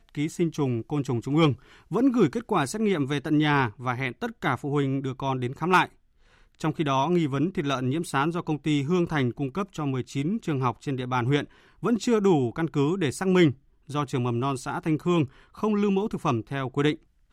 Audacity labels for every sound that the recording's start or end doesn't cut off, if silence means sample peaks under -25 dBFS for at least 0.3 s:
1.920000	5.850000	sound
6.640000	11.430000	sound
11.840000	13.510000	sound
13.940000	15.240000	sound
15.630000	16.930000	sound